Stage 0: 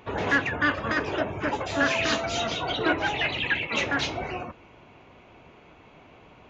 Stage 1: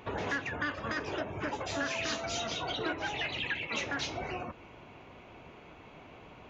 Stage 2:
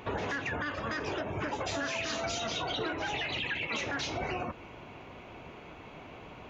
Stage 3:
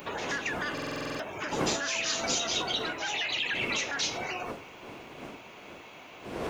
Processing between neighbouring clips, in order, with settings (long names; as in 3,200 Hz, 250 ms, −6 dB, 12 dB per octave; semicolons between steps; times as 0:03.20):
dynamic equaliser 5,800 Hz, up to +6 dB, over −48 dBFS, Q 1.5; downward compressor 2.5 to 1, threshold −36 dBFS, peak gain reduction 12.5 dB
brickwall limiter −29 dBFS, peak gain reduction 8 dB; level +4 dB
wind on the microphone 370 Hz −33 dBFS; RIAA equalisation recording; buffer that repeats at 0:00.73, samples 2,048, times 9